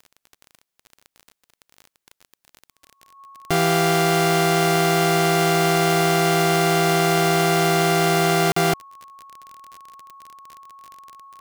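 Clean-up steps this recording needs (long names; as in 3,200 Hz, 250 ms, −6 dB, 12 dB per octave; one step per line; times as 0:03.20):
click removal
notch filter 1,100 Hz, Q 30
repair the gap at 0:08.52, 44 ms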